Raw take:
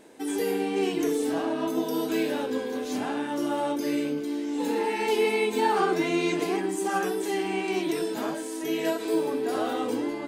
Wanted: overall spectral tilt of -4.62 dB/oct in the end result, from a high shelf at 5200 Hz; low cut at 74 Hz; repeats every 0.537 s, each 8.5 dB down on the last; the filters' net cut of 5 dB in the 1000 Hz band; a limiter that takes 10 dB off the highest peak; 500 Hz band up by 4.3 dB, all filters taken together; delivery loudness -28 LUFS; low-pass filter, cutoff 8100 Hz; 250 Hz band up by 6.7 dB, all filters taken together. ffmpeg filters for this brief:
-af "highpass=74,lowpass=8.1k,equalizer=f=250:t=o:g=8,equalizer=f=500:t=o:g=4,equalizer=f=1k:t=o:g=-9,highshelf=f=5.2k:g=4.5,alimiter=limit=-19.5dB:level=0:latency=1,aecho=1:1:537|1074|1611|2148:0.376|0.143|0.0543|0.0206,volume=-1.5dB"

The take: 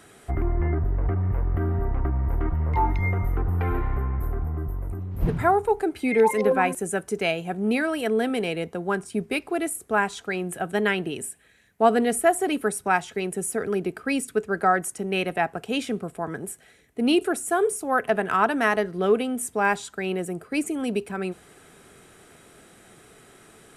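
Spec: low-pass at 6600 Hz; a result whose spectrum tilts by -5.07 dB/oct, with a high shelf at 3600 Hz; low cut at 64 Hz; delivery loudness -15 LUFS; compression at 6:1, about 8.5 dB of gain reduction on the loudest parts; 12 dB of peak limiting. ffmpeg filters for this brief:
-af "highpass=64,lowpass=6.6k,highshelf=f=3.6k:g=-8,acompressor=threshold=-23dB:ratio=6,volume=19.5dB,alimiter=limit=-5.5dB:level=0:latency=1"

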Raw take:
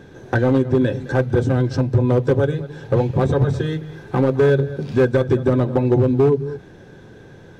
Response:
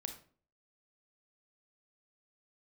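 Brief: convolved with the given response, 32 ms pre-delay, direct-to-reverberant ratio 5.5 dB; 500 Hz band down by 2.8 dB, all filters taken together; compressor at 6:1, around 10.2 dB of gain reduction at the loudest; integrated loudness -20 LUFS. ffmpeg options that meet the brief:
-filter_complex "[0:a]equalizer=f=500:t=o:g=-3.5,acompressor=threshold=-24dB:ratio=6,asplit=2[a][b];[1:a]atrim=start_sample=2205,adelay=32[c];[b][c]afir=irnorm=-1:irlink=0,volume=-3dB[d];[a][d]amix=inputs=2:normalize=0,volume=6.5dB"

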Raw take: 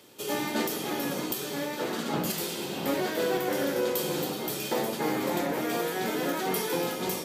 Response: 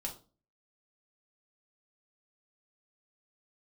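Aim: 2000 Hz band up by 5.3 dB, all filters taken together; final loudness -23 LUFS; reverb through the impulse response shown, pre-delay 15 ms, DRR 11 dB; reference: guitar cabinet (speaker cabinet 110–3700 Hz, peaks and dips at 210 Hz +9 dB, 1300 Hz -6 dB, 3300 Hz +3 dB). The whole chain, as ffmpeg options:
-filter_complex "[0:a]equalizer=f=2k:t=o:g=7.5,asplit=2[a][b];[1:a]atrim=start_sample=2205,adelay=15[c];[b][c]afir=irnorm=-1:irlink=0,volume=-10.5dB[d];[a][d]amix=inputs=2:normalize=0,highpass=110,equalizer=f=210:t=q:w=4:g=9,equalizer=f=1.3k:t=q:w=4:g=-6,equalizer=f=3.3k:t=q:w=4:g=3,lowpass=f=3.7k:w=0.5412,lowpass=f=3.7k:w=1.3066,volume=5.5dB"

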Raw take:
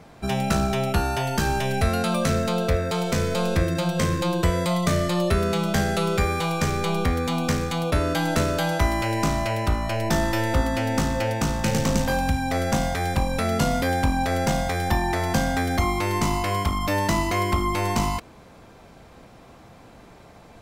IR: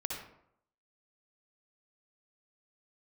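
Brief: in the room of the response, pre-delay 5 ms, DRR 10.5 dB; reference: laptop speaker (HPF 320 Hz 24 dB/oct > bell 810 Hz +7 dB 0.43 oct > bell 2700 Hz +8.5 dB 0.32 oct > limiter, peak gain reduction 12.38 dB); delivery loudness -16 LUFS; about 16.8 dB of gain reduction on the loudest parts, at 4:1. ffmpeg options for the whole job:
-filter_complex "[0:a]acompressor=threshold=-38dB:ratio=4,asplit=2[a][b];[1:a]atrim=start_sample=2205,adelay=5[c];[b][c]afir=irnorm=-1:irlink=0,volume=-12.5dB[d];[a][d]amix=inputs=2:normalize=0,highpass=f=320:w=0.5412,highpass=f=320:w=1.3066,equalizer=f=810:t=o:w=0.43:g=7,equalizer=f=2.7k:t=o:w=0.32:g=8.5,volume=27dB,alimiter=limit=-7.5dB:level=0:latency=1"

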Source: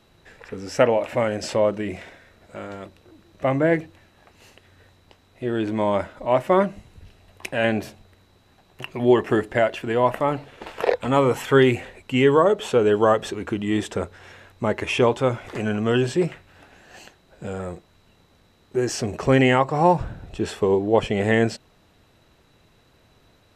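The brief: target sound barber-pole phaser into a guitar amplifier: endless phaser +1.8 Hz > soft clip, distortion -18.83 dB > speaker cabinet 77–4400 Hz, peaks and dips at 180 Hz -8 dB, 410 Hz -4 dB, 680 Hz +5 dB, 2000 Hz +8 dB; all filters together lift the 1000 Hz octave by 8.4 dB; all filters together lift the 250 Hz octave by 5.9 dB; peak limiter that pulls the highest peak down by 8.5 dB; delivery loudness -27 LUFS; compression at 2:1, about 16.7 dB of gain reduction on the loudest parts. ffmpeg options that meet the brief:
-filter_complex "[0:a]equalizer=f=250:t=o:g=9,equalizer=f=1k:t=o:g=8,acompressor=threshold=-38dB:ratio=2,alimiter=limit=-21.5dB:level=0:latency=1,asplit=2[a][b];[b]afreqshift=1.8[c];[a][c]amix=inputs=2:normalize=1,asoftclip=threshold=-26dB,highpass=77,equalizer=f=180:t=q:w=4:g=-8,equalizer=f=410:t=q:w=4:g=-4,equalizer=f=680:t=q:w=4:g=5,equalizer=f=2k:t=q:w=4:g=8,lowpass=f=4.4k:w=0.5412,lowpass=f=4.4k:w=1.3066,volume=11.5dB"

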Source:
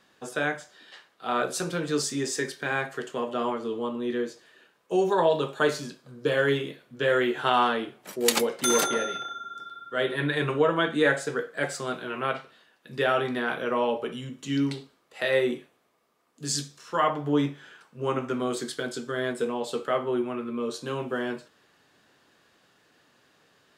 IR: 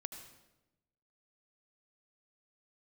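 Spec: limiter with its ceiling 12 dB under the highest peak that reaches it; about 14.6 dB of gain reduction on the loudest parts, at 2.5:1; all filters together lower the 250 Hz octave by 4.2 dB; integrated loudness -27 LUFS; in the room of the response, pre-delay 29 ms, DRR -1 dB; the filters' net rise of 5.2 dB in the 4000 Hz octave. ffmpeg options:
-filter_complex "[0:a]equalizer=f=250:t=o:g=-5.5,equalizer=f=4k:t=o:g=6.5,acompressor=threshold=-39dB:ratio=2.5,alimiter=level_in=4dB:limit=-24dB:level=0:latency=1,volume=-4dB,asplit=2[a][b];[1:a]atrim=start_sample=2205,adelay=29[c];[b][c]afir=irnorm=-1:irlink=0,volume=3.5dB[d];[a][d]amix=inputs=2:normalize=0,volume=9dB"

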